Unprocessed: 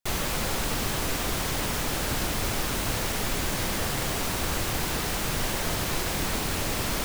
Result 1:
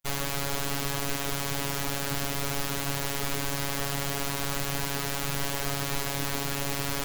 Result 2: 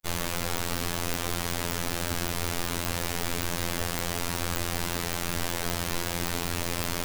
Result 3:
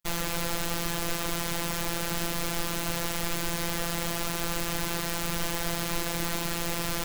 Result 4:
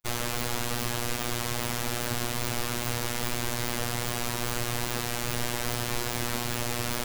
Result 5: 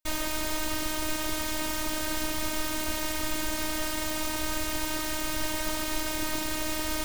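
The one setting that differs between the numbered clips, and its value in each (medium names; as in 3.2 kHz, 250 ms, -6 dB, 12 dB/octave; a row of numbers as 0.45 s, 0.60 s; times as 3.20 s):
robot voice, frequency: 140 Hz, 86 Hz, 170 Hz, 120 Hz, 310 Hz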